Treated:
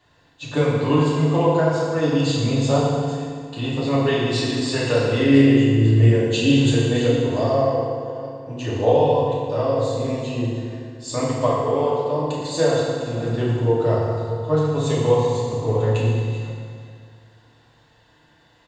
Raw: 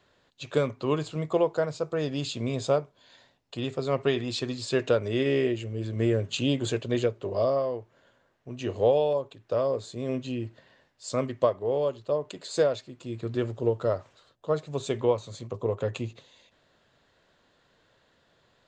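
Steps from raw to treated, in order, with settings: chunks repeated in reverse 359 ms, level -12.5 dB; comb 1.1 ms, depth 34%; FDN reverb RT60 2 s, low-frequency decay 1.1×, high-frequency decay 0.75×, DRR -7.5 dB

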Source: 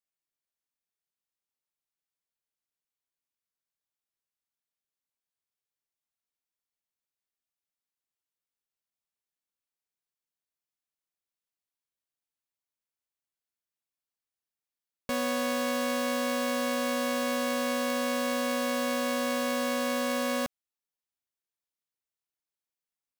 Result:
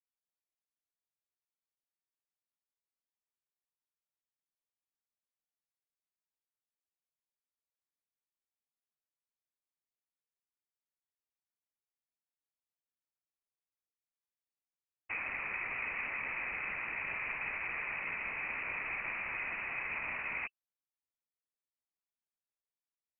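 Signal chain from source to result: noise-vocoded speech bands 6; frequency inversion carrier 2.8 kHz; trim -8.5 dB

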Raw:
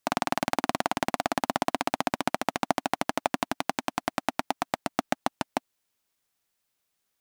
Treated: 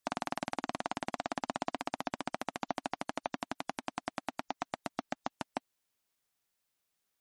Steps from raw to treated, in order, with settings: spectral gate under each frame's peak -30 dB strong; peak limiter -12.5 dBFS, peak gain reduction 7.5 dB; trim -4 dB

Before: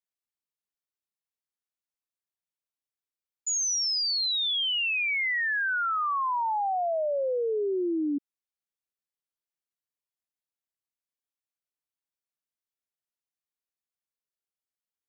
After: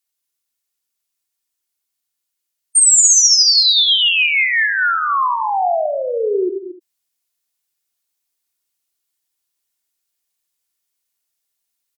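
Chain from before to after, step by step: delay 92 ms -10.5 dB; in parallel at +2.5 dB: gain riding; on the sum: gated-style reverb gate 300 ms rising, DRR 8.5 dB; tape speed +26%; comb 2.8 ms, depth 32%; spectral gate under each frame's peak -25 dB strong; treble shelf 2.8 kHz +12 dB; trim -1 dB

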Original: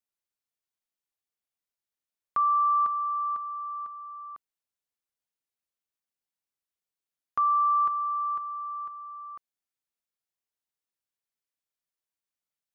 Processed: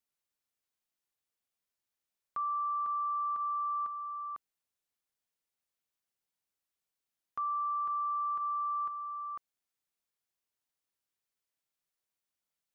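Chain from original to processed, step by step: peak limiter -31.5 dBFS, peak gain reduction 11.5 dB; trim +1.5 dB

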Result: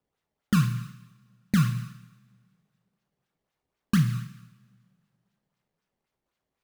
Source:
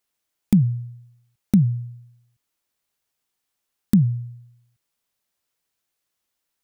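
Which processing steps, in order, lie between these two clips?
decimation with a swept rate 20×, swing 160% 3.9 Hz; two-slope reverb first 0.82 s, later 2.3 s, from -23 dB, DRR 4.5 dB; trim -6.5 dB

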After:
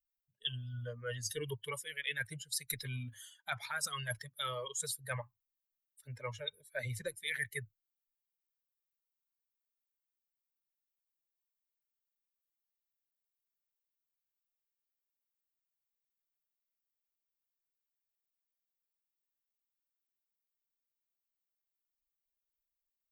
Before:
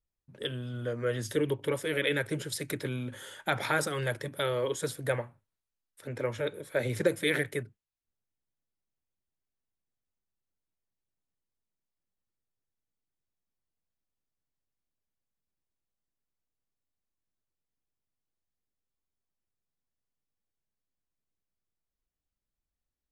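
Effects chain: expander on every frequency bin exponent 2; amplifier tone stack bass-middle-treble 10-0-10; reverse; compression 6:1, threshold -52 dBFS, peak gain reduction 18.5 dB; reverse; trim +16 dB

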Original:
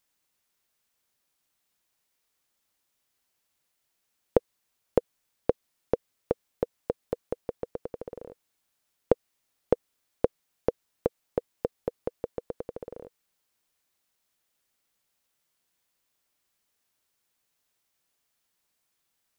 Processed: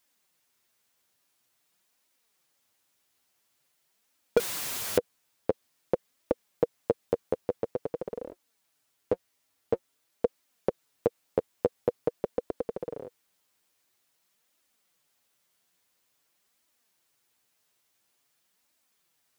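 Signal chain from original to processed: high-pass 84 Hz 6 dB/octave; peak limiter -14 dBFS, peak gain reduction 8.5 dB; flange 0.48 Hz, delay 2.9 ms, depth 9.1 ms, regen +5%; 4.37–4.98 s: power-law waveshaper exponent 0.35; 8.31–10.25 s: comb of notches 180 Hz; trim +7.5 dB

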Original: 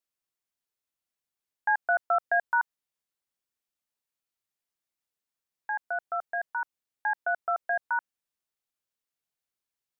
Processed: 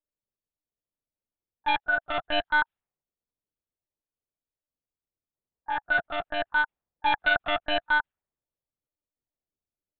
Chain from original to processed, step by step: coarse spectral quantiser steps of 15 dB; level-controlled noise filter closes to 520 Hz, open at -23 dBFS; 1.77–2.36 s: peaking EQ 1.2 kHz -8 dB -> -1 dB 3 oct; gain riding within 3 dB 2 s; overload inside the chain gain 26 dB; monotone LPC vocoder at 8 kHz 300 Hz; trim +8.5 dB

